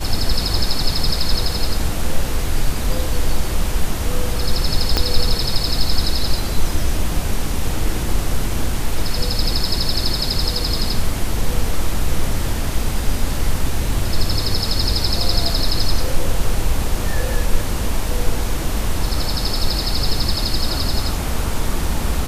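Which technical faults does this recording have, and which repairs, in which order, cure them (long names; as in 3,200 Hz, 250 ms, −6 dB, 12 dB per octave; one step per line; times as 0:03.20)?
0:04.97: click −2 dBFS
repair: click removal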